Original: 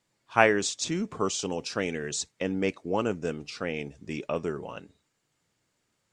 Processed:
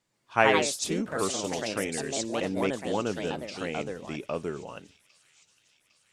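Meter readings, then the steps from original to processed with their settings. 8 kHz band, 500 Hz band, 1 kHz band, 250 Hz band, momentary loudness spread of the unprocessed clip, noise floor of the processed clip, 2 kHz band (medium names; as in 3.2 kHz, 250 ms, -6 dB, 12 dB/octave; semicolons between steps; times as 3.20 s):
+0.5 dB, 0.0 dB, +1.0 dB, -0.5 dB, 14 LU, -71 dBFS, 0.0 dB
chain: ever faster or slower copies 135 ms, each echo +3 st, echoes 2; on a send: feedback echo behind a high-pass 806 ms, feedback 62%, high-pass 3.3 kHz, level -17 dB; on the sum: trim -2 dB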